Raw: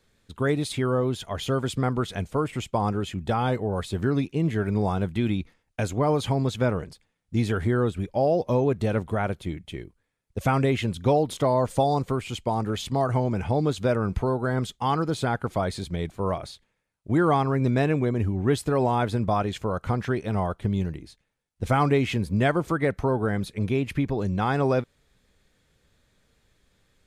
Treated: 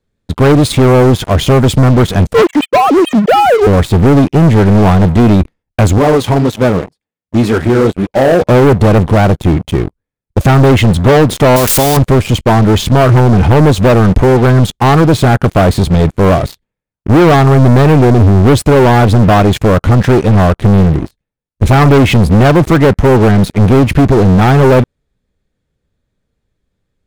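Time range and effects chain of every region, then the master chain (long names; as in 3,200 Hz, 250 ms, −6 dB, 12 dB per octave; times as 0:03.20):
0:02.34–0:03.67: three sine waves on the formant tracks + highs frequency-modulated by the lows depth 0.39 ms
0:05.98–0:08.42: high-pass filter 320 Hz 6 dB per octave + flanger 1.9 Hz, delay 2.4 ms, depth 9.7 ms, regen −46%
0:11.56–0:11.97: spike at every zero crossing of −20.5 dBFS + low-shelf EQ 270 Hz −7.5 dB + every bin compressed towards the loudest bin 2 to 1
whole clip: tilt shelving filter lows +5.5 dB, about 760 Hz; leveller curve on the samples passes 5; level +3.5 dB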